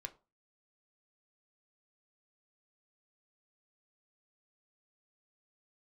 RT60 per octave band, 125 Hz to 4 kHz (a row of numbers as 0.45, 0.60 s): 0.35, 0.35, 0.30, 0.30, 0.20, 0.20 s